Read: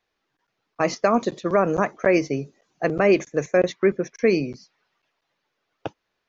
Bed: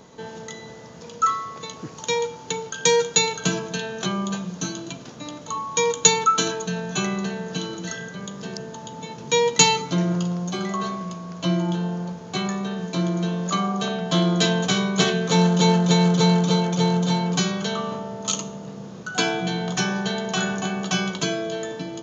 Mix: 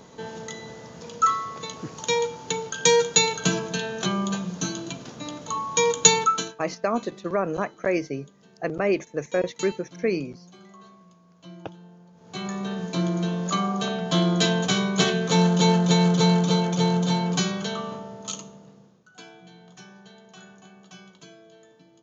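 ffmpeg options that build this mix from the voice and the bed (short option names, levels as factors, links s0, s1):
-filter_complex "[0:a]adelay=5800,volume=0.531[s0];[1:a]volume=10.6,afade=t=out:st=6.18:d=0.37:silence=0.0794328,afade=t=in:st=12.12:d=0.59:silence=0.0944061,afade=t=out:st=17.31:d=1.7:silence=0.0794328[s1];[s0][s1]amix=inputs=2:normalize=0"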